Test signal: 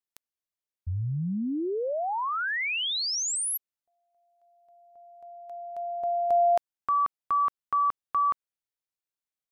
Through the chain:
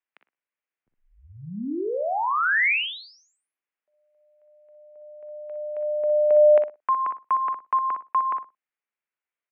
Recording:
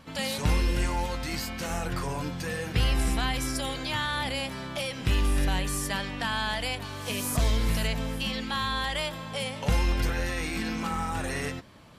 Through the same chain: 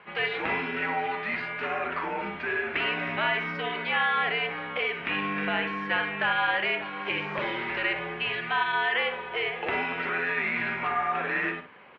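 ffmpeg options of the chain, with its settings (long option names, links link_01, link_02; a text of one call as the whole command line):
ffmpeg -i in.wav -filter_complex "[0:a]highpass=frequency=320:width_type=q:width=0.5412,highpass=frequency=320:width_type=q:width=1.307,lowpass=frequency=2500:width_type=q:width=0.5176,lowpass=frequency=2500:width_type=q:width=0.7071,lowpass=frequency=2500:width_type=q:width=1.932,afreqshift=-94,asplit=2[link_01][link_02];[link_02]adelay=45,volume=-14dB[link_03];[link_01][link_03]amix=inputs=2:normalize=0,crystalizer=i=8.5:c=0,asplit=2[link_04][link_05];[link_05]adelay=60,lowpass=frequency=1700:poles=1,volume=-6dB,asplit=2[link_06][link_07];[link_07]adelay=60,lowpass=frequency=1700:poles=1,volume=0.19,asplit=2[link_08][link_09];[link_09]adelay=60,lowpass=frequency=1700:poles=1,volume=0.19[link_10];[link_04][link_06][link_08][link_10]amix=inputs=4:normalize=0" out.wav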